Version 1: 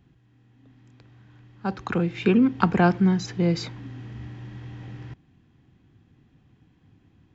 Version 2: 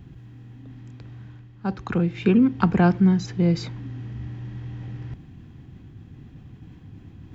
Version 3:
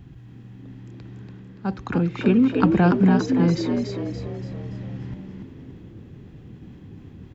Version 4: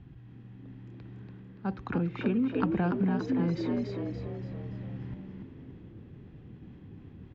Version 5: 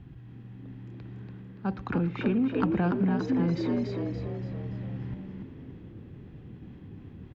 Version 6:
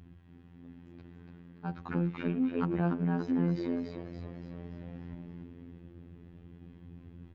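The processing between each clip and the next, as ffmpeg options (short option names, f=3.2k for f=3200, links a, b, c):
-af "lowshelf=f=230:g=8.5,areverse,acompressor=mode=upward:threshold=-29dB:ratio=2.5,areverse,volume=-2.5dB"
-filter_complex "[0:a]asplit=7[a][b][c][d][e][f][g];[b]adelay=286,afreqshift=70,volume=-5dB[h];[c]adelay=572,afreqshift=140,volume=-11.9dB[i];[d]adelay=858,afreqshift=210,volume=-18.9dB[j];[e]adelay=1144,afreqshift=280,volume=-25.8dB[k];[f]adelay=1430,afreqshift=350,volume=-32.7dB[l];[g]adelay=1716,afreqshift=420,volume=-39.7dB[m];[a][h][i][j][k][l][m]amix=inputs=7:normalize=0"
-af "lowpass=3.5k,acompressor=threshold=-18dB:ratio=6,volume=-6dB"
-filter_complex "[0:a]asplit=2[a][b];[b]asoftclip=type=tanh:threshold=-27dB,volume=-8dB[c];[a][c]amix=inputs=2:normalize=0,asplit=2[d][e];[e]adelay=116.6,volume=-19dB,highshelf=f=4k:g=-2.62[f];[d][f]amix=inputs=2:normalize=0"
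-af "afftfilt=real='hypot(re,im)*cos(PI*b)':imag='0':win_size=2048:overlap=0.75,adynamicequalizer=threshold=0.00158:dfrequency=3900:dqfactor=0.7:tfrequency=3900:tqfactor=0.7:attack=5:release=100:ratio=0.375:range=2.5:mode=cutabove:tftype=highshelf,volume=-2dB"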